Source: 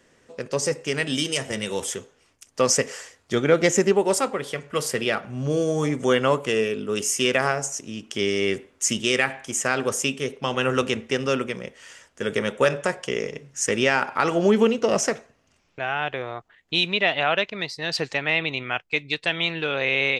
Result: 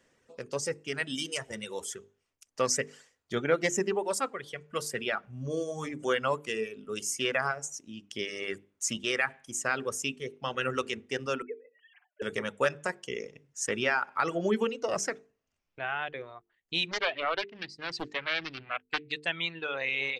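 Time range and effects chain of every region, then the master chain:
0:11.42–0:12.22: three sine waves on the formant tracks + comb filter 6.8 ms, depth 61% + treble cut that deepens with the level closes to 1,100 Hz, closed at −27.5 dBFS
0:16.91–0:19.12: high-frequency loss of the air 72 metres + highs frequency-modulated by the lows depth 0.77 ms
whole clip: dynamic equaliser 1,500 Hz, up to +4 dB, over −33 dBFS, Q 1.4; reverb reduction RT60 1.6 s; mains-hum notches 50/100/150/200/250/300/350/400/450 Hz; level −8 dB

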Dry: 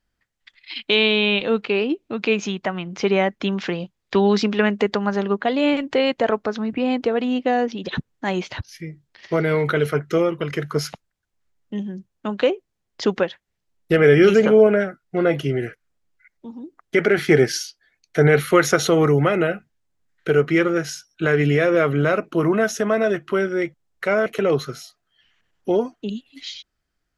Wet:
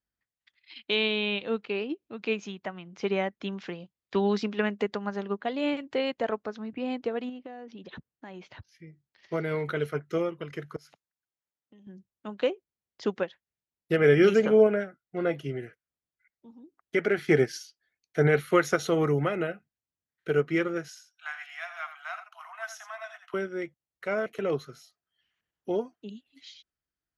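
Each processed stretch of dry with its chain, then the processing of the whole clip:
0:07.29–0:08.88: low-pass filter 3,100 Hz 6 dB per octave + downward compressor 12 to 1, threshold −23 dBFS
0:10.76–0:11.87: high-pass filter 250 Hz 6 dB per octave + downward compressor 8 to 1, threshold −37 dBFS
0:20.88–0:23.34: Chebyshev high-pass filter 690 Hz, order 8 + single-tap delay 84 ms −8.5 dB
whole clip: high-pass filter 49 Hz; expander for the loud parts 1.5 to 1, over −28 dBFS; level −5.5 dB

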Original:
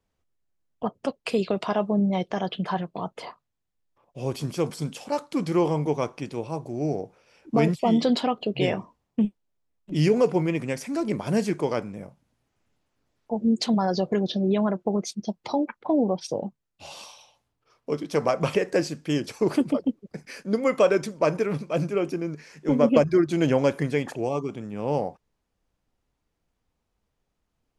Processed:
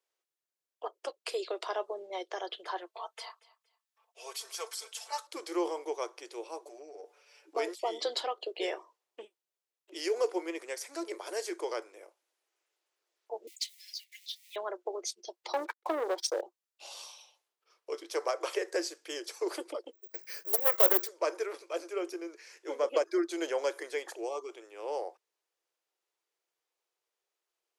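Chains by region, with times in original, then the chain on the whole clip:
0:02.86–0:05.27: high-pass filter 860 Hz + comb filter 4.5 ms, depth 99% + repeating echo 233 ms, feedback 28%, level −22 dB
0:06.65–0:07.55: comb filter 6.9 ms, depth 95% + downward compressor 12 to 1, threshold −31 dBFS
0:13.47–0:14.56: mu-law and A-law mismatch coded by mu + Butterworth high-pass 2,000 Hz 96 dB per octave + dynamic equaliser 4,100 Hz, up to −5 dB, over −39 dBFS, Q 0.83
0:15.53–0:16.41: leveller curve on the samples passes 2 + noise gate −34 dBFS, range −31 dB
0:19.93–0:21.08: mains-hum notches 50/100/150/200/250/300 Hz + bad sample-rate conversion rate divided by 2×, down filtered, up zero stuff + highs frequency-modulated by the lows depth 0.49 ms
whole clip: dynamic equaliser 2,600 Hz, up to −7 dB, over −51 dBFS, Q 3.4; Chebyshev high-pass filter 340 Hz, order 6; high-shelf EQ 2,000 Hz +9.5 dB; level −9 dB

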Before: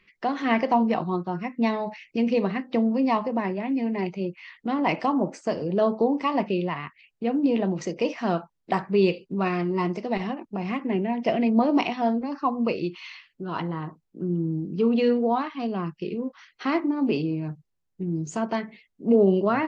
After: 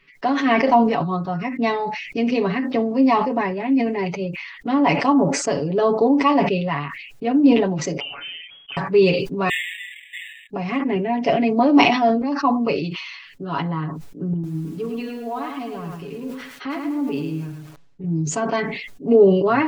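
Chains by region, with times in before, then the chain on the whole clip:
0:08.00–0:08.77: downward compressor, threshold −37 dBFS + voice inversion scrambler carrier 3,300 Hz
0:09.49–0:10.50: converter with a step at zero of −35 dBFS + linear-phase brick-wall band-pass 1,700–3,800 Hz + linearly interpolated sample-rate reduction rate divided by 8×
0:14.33–0:18.04: low-pass filter 4,800 Hz + downward compressor 2 to 1, threshold −38 dBFS + feedback echo at a low word length 106 ms, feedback 35%, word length 9 bits, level −4.5 dB
whole clip: comb filter 7.1 ms, depth 92%; level that may fall only so fast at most 53 dB per second; level +2.5 dB

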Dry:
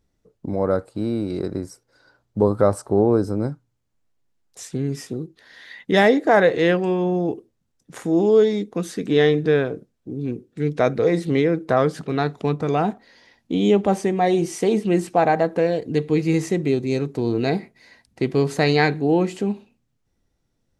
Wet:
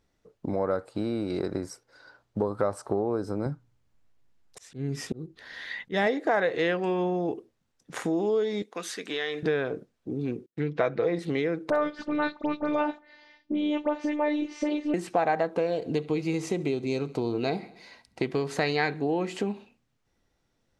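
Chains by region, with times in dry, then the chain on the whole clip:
0:03.46–0:06.07: low-shelf EQ 200 Hz +11.5 dB + volume swells 312 ms
0:08.62–0:09.43: high-pass filter 1,300 Hz 6 dB per octave + downward compressor, threshold −28 dBFS
0:10.46–0:11.19: comb filter 6 ms, depth 38% + downward expander −33 dBFS + low-pass filter 3,800 Hz
0:11.70–0:14.94: high-frequency loss of the air 180 metres + phases set to zero 297 Hz + all-pass dispersion highs, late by 65 ms, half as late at 2,400 Hz
0:15.50–0:18.22: parametric band 1,800 Hz −11.5 dB 0.29 octaves + repeating echo 68 ms, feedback 55%, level −23 dB
whole clip: high-shelf EQ 6,600 Hz −11 dB; downward compressor, threshold −24 dBFS; low-shelf EQ 420 Hz −10 dB; level +5.5 dB

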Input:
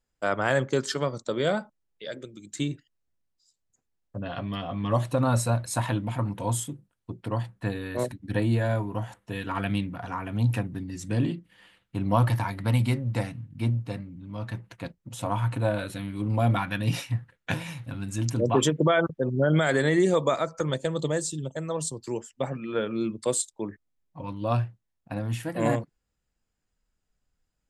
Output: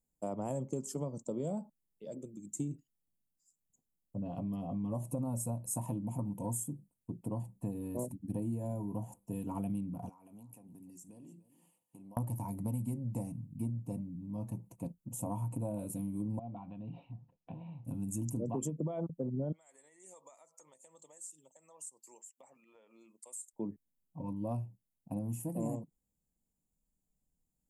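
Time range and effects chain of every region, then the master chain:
0:10.09–0:12.17: high-pass filter 880 Hz 6 dB per octave + downward compressor, threshold −47 dBFS + single-tap delay 297 ms −16.5 dB
0:16.39–0:17.85: downward compressor 2.5 to 1, threshold −39 dBFS + Chebyshev low-pass with heavy ripple 4,000 Hz, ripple 3 dB + parametric band 710 Hz +7 dB 0.24 octaves
0:19.52–0:23.53: high-pass filter 1,300 Hz + parametric band 1,900 Hz +10 dB 0.54 octaves + downward compressor 3 to 1, threshold −45 dBFS
whole clip: drawn EQ curve 110 Hz 0 dB, 170 Hz +8 dB, 260 Hz +6 dB, 370 Hz 0 dB, 950 Hz −2 dB, 1,600 Hz −30 dB, 2,600 Hz −14 dB, 3,800 Hz −24 dB, 7,000 Hz +4 dB, 11,000 Hz +11 dB; downward compressor 6 to 1, threshold −26 dBFS; level −7 dB

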